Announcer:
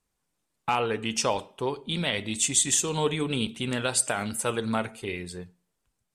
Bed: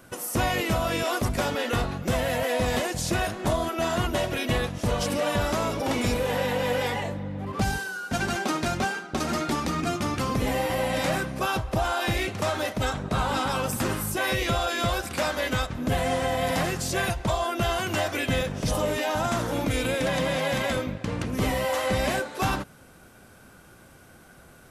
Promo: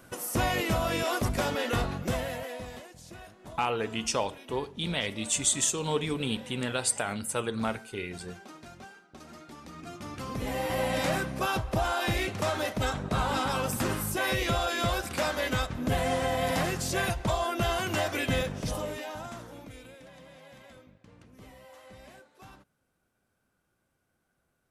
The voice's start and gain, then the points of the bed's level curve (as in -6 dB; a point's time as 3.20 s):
2.90 s, -3.0 dB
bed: 2.02 s -2.5 dB
2.90 s -21 dB
9.51 s -21 dB
10.79 s -2.5 dB
18.41 s -2.5 dB
20.08 s -25.5 dB